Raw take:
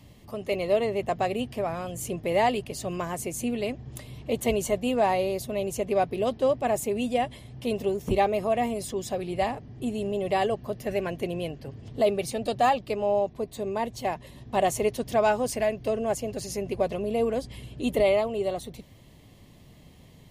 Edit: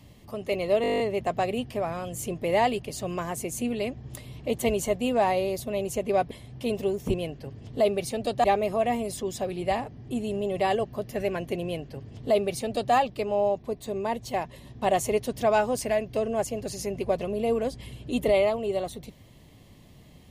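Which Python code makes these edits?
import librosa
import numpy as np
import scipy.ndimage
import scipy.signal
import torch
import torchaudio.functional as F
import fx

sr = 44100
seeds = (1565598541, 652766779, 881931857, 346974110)

y = fx.edit(x, sr, fx.stutter(start_s=0.82, slice_s=0.02, count=10),
    fx.cut(start_s=6.13, length_s=1.19),
    fx.duplicate(start_s=11.35, length_s=1.3, to_s=8.15), tone=tone)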